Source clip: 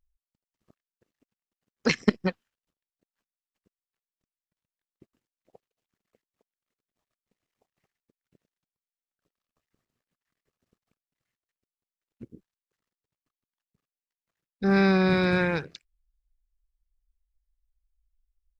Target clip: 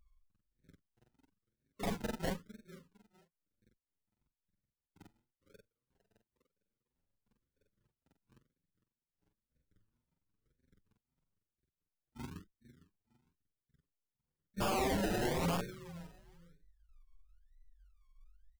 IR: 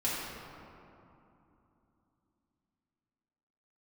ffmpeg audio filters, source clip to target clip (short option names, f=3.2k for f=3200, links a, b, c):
-filter_complex "[0:a]afftfilt=real='re':imag='-im':win_size=4096:overlap=0.75,aemphasis=mode=reproduction:type=bsi,afftfilt=real='re*(1-between(b*sr/4096,610,6200))':imag='im*(1-between(b*sr/4096,610,6200))':win_size=4096:overlap=0.75,highshelf=f=2.1k:g=-9,acrossover=split=420|870[a][b][c];[a]acompressor=threshold=-27dB:ratio=4[d];[b]acompressor=threshold=-35dB:ratio=4[e];[c]acompressor=threshold=-54dB:ratio=4[f];[d][e][f]amix=inputs=3:normalize=0,alimiter=level_in=0.5dB:limit=-24dB:level=0:latency=1:release=291,volume=-0.5dB,asplit=2[g][h];[h]adelay=455,lowpass=f=3.3k:p=1,volume=-17dB,asplit=2[i][j];[j]adelay=455,lowpass=f=3.3k:p=1,volume=0.23[k];[g][i][k]amix=inputs=3:normalize=0,aexciter=amount=3.4:drive=3.7:freq=4.6k,acrusher=samples=31:mix=1:aa=0.000001:lfo=1:lforange=18.6:lforate=1,aeval=exprs='(mod(25.1*val(0)+1,2)-1)/25.1':c=same,asplit=2[l][m];[m]adelay=6.6,afreqshift=1.9[n];[l][n]amix=inputs=2:normalize=1,volume=2.5dB"